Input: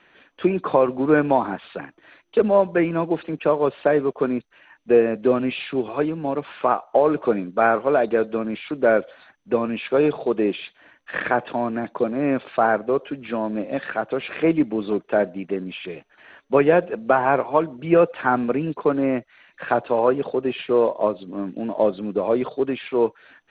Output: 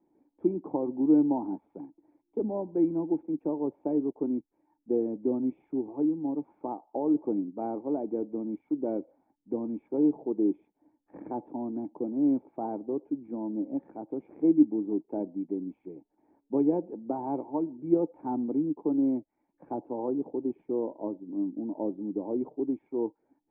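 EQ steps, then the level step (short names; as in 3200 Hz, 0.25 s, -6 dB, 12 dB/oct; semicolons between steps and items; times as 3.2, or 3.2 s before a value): vocal tract filter u; 0.0 dB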